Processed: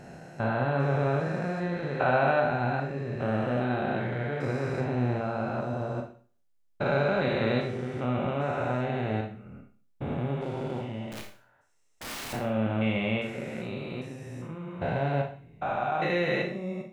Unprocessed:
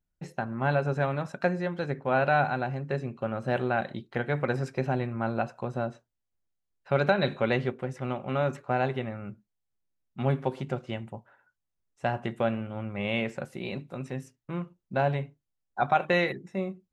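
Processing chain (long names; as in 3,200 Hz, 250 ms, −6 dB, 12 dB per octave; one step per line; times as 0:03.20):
spectrum averaged block by block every 400 ms
0:11.11–0:12.33: wrap-around overflow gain 37.5 dB
four-comb reverb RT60 0.42 s, combs from 25 ms, DRR 2.5 dB
level +2.5 dB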